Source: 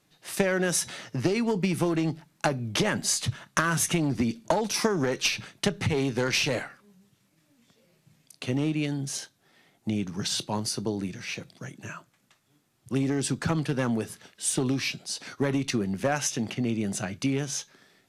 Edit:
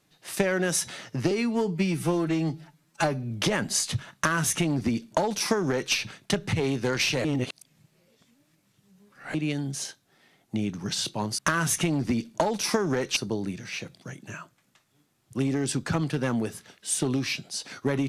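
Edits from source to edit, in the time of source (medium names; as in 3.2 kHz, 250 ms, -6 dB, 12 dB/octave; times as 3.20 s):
1.31–2.64 s: stretch 1.5×
3.49–5.27 s: copy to 10.72 s
6.58–8.68 s: reverse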